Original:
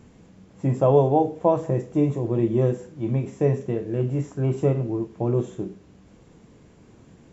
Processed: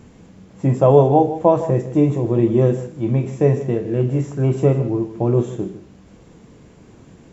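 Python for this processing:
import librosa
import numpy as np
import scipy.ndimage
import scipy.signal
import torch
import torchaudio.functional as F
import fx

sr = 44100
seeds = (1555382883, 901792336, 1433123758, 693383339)

y = x + 10.0 ** (-14.0 / 20.0) * np.pad(x, (int(155 * sr / 1000.0), 0))[:len(x)]
y = y * 10.0 ** (5.5 / 20.0)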